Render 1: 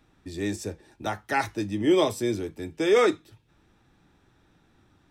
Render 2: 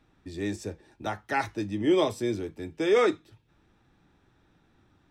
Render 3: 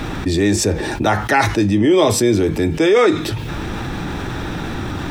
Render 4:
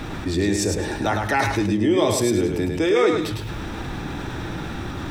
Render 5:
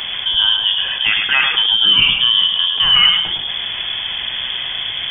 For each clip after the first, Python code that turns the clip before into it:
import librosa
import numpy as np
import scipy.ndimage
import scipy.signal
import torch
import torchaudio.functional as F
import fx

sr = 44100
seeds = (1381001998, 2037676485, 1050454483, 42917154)

y1 = fx.high_shelf(x, sr, hz=7800.0, db=-9.0)
y1 = y1 * librosa.db_to_amplitude(-2.0)
y2 = fx.env_flatten(y1, sr, amount_pct=70)
y2 = y2 * librosa.db_to_amplitude(7.5)
y3 = fx.echo_feedback(y2, sr, ms=105, feedback_pct=24, wet_db=-5)
y3 = y3 * librosa.db_to_amplitude(-6.5)
y4 = fx.freq_invert(y3, sr, carrier_hz=3400)
y4 = y4 * librosa.db_to_amplitude(6.0)